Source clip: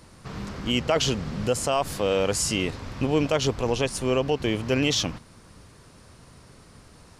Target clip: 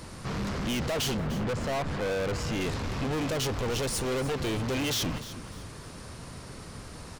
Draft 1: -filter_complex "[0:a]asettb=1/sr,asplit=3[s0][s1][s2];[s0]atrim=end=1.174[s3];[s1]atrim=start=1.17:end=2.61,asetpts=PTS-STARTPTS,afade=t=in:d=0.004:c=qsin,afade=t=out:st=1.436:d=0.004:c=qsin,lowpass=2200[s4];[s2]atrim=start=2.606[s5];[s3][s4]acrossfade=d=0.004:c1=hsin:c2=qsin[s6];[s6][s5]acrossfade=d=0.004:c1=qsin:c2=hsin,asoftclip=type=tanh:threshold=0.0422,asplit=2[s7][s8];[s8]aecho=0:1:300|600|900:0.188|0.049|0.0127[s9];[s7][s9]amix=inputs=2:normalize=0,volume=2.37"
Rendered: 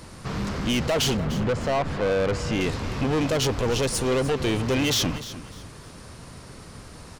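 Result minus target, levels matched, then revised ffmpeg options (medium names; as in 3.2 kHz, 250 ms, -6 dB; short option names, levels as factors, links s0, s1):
saturation: distortion -4 dB
-filter_complex "[0:a]asettb=1/sr,asplit=3[s0][s1][s2];[s0]atrim=end=1.174[s3];[s1]atrim=start=1.17:end=2.61,asetpts=PTS-STARTPTS,afade=t=in:d=0.004:c=qsin,afade=t=out:st=1.436:d=0.004:c=qsin,lowpass=2200[s4];[s2]atrim=start=2.606[s5];[s3][s4]acrossfade=d=0.004:c1=hsin:c2=qsin[s6];[s6][s5]acrossfade=d=0.004:c1=qsin:c2=hsin,asoftclip=type=tanh:threshold=0.0168,asplit=2[s7][s8];[s8]aecho=0:1:300|600|900:0.188|0.049|0.0127[s9];[s7][s9]amix=inputs=2:normalize=0,volume=2.37"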